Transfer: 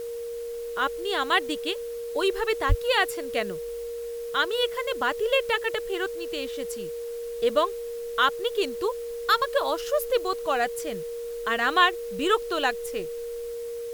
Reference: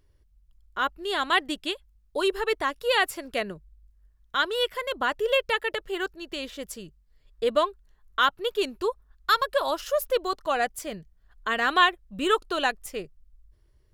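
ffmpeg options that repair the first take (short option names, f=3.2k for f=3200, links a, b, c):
-filter_complex "[0:a]bandreject=f=470:w=30,asplit=3[a][b][c];[a]afade=t=out:st=2.68:d=0.02[d];[b]highpass=f=140:w=0.5412,highpass=f=140:w=1.3066,afade=t=in:st=2.68:d=0.02,afade=t=out:st=2.8:d=0.02[e];[c]afade=t=in:st=2.8:d=0.02[f];[d][e][f]amix=inputs=3:normalize=0,afwtdn=0.0032"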